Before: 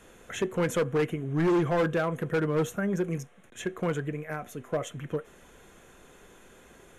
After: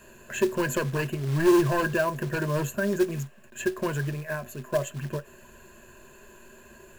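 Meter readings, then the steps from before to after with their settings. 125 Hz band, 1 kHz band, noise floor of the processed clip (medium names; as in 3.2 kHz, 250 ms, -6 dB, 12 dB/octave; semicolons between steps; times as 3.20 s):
+2.5 dB, +2.5 dB, -52 dBFS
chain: rippled EQ curve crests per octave 1.4, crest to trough 15 dB; short-mantissa float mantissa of 2-bit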